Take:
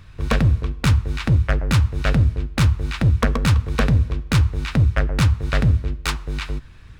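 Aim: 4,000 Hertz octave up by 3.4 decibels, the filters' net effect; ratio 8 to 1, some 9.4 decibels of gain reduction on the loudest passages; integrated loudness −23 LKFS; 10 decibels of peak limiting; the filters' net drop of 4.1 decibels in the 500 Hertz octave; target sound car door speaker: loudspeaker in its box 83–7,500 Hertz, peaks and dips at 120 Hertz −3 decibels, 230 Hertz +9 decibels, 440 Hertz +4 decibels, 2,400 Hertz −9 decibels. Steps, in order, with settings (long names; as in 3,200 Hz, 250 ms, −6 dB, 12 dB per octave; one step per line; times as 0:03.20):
parametric band 500 Hz −8 dB
parametric band 4,000 Hz +5.5 dB
downward compressor 8 to 1, threshold −22 dBFS
brickwall limiter −19 dBFS
loudspeaker in its box 83–7,500 Hz, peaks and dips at 120 Hz −3 dB, 230 Hz +9 dB, 440 Hz +4 dB, 2,400 Hz −9 dB
level +8.5 dB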